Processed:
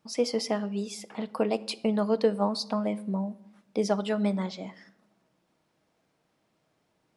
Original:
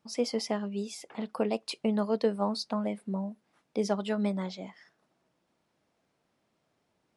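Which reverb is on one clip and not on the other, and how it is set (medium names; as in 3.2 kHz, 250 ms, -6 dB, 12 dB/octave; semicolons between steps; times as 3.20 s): simulated room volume 3000 m³, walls furnished, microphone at 0.56 m; trim +2.5 dB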